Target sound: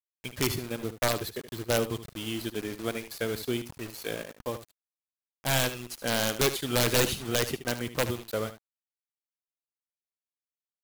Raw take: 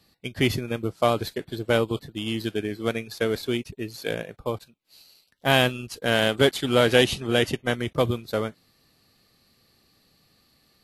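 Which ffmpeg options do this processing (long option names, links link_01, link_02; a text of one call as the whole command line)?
ffmpeg -i in.wav -filter_complex "[0:a]highshelf=frequency=9900:gain=11.5,aeval=exprs='(mod(3.35*val(0)+1,2)-1)/3.35':channel_layout=same,acrusher=bits=5:mix=0:aa=0.000001,aphaser=in_gain=1:out_gain=1:delay=4.2:decay=0.21:speed=0.57:type=triangular,asplit=2[link_01][link_02];[link_02]aecho=0:1:74:0.237[link_03];[link_01][link_03]amix=inputs=2:normalize=0,volume=-6dB" out.wav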